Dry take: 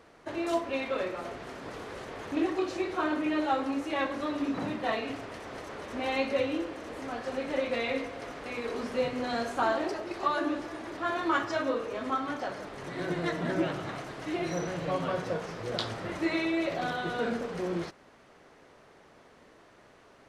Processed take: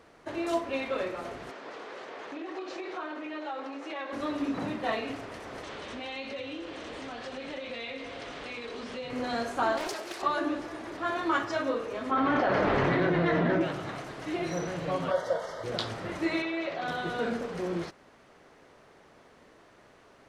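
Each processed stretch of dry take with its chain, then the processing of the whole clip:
0:01.51–0:04.13: downward compressor 10 to 1, threshold −31 dBFS + band-pass filter 360–5,300 Hz
0:05.63–0:09.10: Butterworth low-pass 9,400 Hz + parametric band 3,400 Hz +8.5 dB 1.1 octaves + downward compressor 4 to 1, threshold −36 dBFS
0:09.77–0:10.22: RIAA equalisation recording + highs frequency-modulated by the lows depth 0.35 ms
0:12.11–0:13.61: low-pass filter 2,800 Hz + double-tracking delay 30 ms −13 dB + envelope flattener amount 100%
0:15.11–0:15.64: Butterworth band-reject 2,500 Hz, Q 3.1 + low shelf with overshoot 410 Hz −7 dB, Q 3 + comb filter 3.2 ms, depth 43%
0:16.42–0:16.88: low-pass filter 4,500 Hz + low-shelf EQ 280 Hz −11 dB
whole clip: no processing

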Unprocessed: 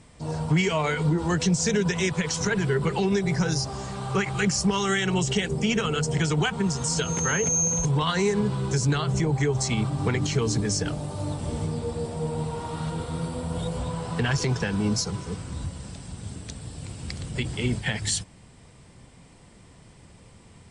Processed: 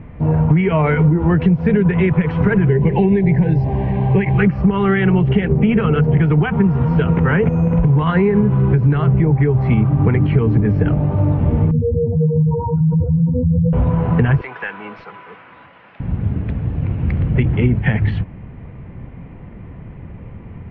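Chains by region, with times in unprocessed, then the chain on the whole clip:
0:02.69–0:04.38: Butterworth band-reject 1,300 Hz, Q 2 + high-shelf EQ 4,100 Hz +5 dB
0:11.71–0:13.73: expanding power law on the bin magnitudes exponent 3.3 + high-pass filter 59 Hz 24 dB per octave
0:14.41–0:16.00: high-pass filter 1,100 Hz + hard clipping −26 dBFS
whole clip: Butterworth low-pass 2,500 Hz 36 dB per octave; low-shelf EQ 370 Hz +10.5 dB; downward compressor, threshold −19 dBFS; level +8.5 dB

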